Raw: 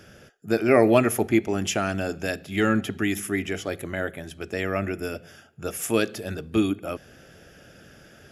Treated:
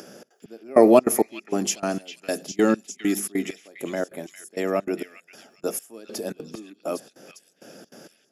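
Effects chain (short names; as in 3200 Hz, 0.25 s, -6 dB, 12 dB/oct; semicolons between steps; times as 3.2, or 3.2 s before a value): HPF 200 Hz 24 dB/oct; band shelf 2200 Hz -9 dB; upward compressor, threshold -44 dBFS; step gate "xxx.xx...." 197 bpm -24 dB; delay with a stepping band-pass 0.403 s, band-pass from 2800 Hz, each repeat 0.7 oct, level -5 dB; gain +4.5 dB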